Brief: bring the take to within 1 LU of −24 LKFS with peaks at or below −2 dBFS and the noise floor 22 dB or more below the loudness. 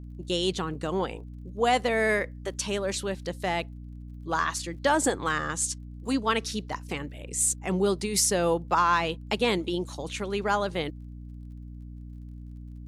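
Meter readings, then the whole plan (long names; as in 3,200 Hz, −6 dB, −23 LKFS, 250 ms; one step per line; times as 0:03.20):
crackle rate 32 per second; mains hum 60 Hz; hum harmonics up to 300 Hz; level of the hum −39 dBFS; integrated loudness −27.5 LKFS; sample peak −11.5 dBFS; target loudness −24.0 LKFS
→ click removal
hum removal 60 Hz, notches 5
level +3.5 dB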